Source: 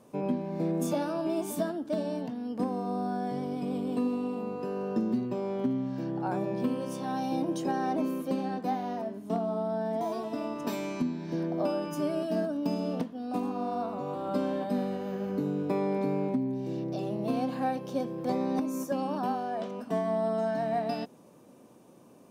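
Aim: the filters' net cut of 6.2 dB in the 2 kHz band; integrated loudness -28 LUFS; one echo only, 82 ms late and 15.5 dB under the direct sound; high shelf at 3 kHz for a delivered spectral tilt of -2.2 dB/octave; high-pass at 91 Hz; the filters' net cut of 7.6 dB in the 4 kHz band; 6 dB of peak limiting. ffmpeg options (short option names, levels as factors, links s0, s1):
-af "highpass=91,equalizer=f=2000:t=o:g=-6,highshelf=f=3000:g=-4.5,equalizer=f=4000:t=o:g=-4.5,alimiter=limit=0.0631:level=0:latency=1,aecho=1:1:82:0.168,volume=1.78"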